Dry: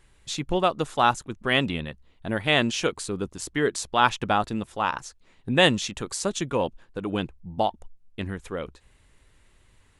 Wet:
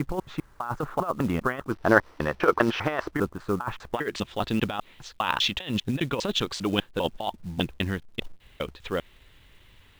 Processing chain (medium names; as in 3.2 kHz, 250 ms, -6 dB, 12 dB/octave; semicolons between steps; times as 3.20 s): slices played last to first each 200 ms, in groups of 3; compressor with a negative ratio -26 dBFS, ratio -0.5; low-pass sweep 1.3 kHz -> 3.4 kHz, 3.72–4.28 s; companded quantiser 6-bit; time-frequency box 1.71–3.11 s, 300–6200 Hz +8 dB